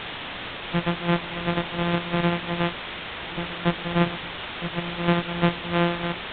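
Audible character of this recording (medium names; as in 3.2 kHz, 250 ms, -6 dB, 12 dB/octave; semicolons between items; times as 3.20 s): a buzz of ramps at a fixed pitch in blocks of 256 samples; tremolo triangle 2.8 Hz, depth 90%; a quantiser's noise floor 6-bit, dither triangular; µ-law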